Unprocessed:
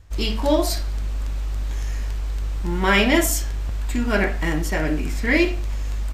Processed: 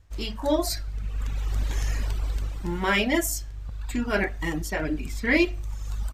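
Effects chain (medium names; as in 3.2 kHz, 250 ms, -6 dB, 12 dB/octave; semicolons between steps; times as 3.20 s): reverb removal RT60 1.5 s; level rider gain up to 13 dB; trim -8 dB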